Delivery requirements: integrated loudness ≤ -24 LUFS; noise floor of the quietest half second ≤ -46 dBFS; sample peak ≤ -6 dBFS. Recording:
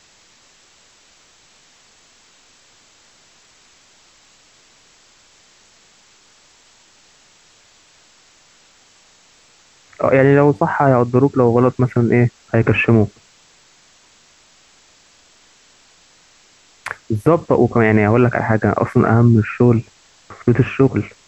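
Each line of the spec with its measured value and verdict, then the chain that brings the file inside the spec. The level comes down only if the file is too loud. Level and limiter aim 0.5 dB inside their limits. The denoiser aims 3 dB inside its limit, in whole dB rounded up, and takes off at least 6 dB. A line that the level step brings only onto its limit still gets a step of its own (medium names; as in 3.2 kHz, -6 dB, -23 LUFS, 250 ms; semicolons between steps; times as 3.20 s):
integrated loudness -15.0 LUFS: fail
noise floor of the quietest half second -52 dBFS: pass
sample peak -1.5 dBFS: fail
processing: trim -9.5 dB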